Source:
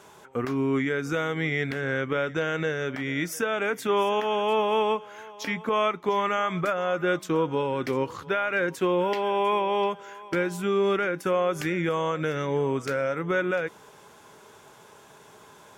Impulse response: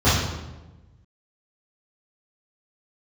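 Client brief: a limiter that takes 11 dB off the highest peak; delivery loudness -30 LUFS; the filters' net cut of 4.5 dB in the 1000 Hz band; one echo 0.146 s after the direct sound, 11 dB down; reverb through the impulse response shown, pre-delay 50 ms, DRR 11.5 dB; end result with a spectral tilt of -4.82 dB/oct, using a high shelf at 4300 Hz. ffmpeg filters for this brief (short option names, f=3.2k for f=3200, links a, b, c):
-filter_complex "[0:a]equalizer=f=1k:t=o:g=-6,highshelf=f=4.3k:g=6,alimiter=level_in=1.5dB:limit=-24dB:level=0:latency=1,volume=-1.5dB,aecho=1:1:146:0.282,asplit=2[a][b];[1:a]atrim=start_sample=2205,adelay=50[c];[b][c]afir=irnorm=-1:irlink=0,volume=-32.5dB[d];[a][d]amix=inputs=2:normalize=0,volume=3.5dB"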